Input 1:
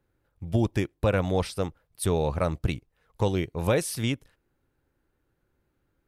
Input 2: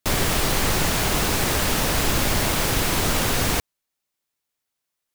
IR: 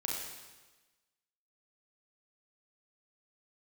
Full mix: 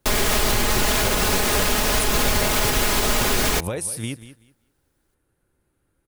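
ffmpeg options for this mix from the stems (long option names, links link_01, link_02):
-filter_complex "[0:a]equalizer=frequency=9700:width=2.1:gain=14,acompressor=threshold=-27dB:ratio=6,volume=2.5dB,asplit=2[link_01][link_02];[link_02]volume=-14.5dB[link_03];[1:a]equalizer=frequency=170:width=4.3:gain=-13.5,aecho=1:1:4.8:0.55,volume=3dB[link_04];[link_03]aecho=0:1:190|380|570:1|0.19|0.0361[link_05];[link_01][link_04][link_05]amix=inputs=3:normalize=0,alimiter=limit=-9.5dB:level=0:latency=1:release=82"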